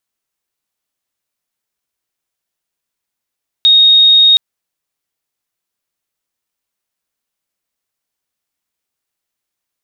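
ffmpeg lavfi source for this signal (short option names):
-f lavfi -i "sine=f=3730:d=0.72:r=44100,volume=14.06dB"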